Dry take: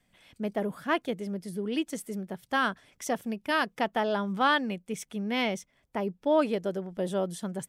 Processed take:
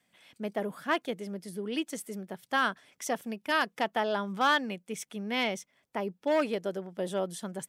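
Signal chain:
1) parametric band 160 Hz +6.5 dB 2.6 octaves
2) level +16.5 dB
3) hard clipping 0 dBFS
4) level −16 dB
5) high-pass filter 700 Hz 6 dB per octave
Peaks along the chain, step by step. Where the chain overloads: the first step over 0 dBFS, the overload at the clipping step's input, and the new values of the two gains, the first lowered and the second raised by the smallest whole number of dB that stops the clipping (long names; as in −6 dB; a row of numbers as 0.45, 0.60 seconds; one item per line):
−11.0, +5.5, 0.0, −16.0, −13.5 dBFS
step 2, 5.5 dB
step 2 +10.5 dB, step 4 −10 dB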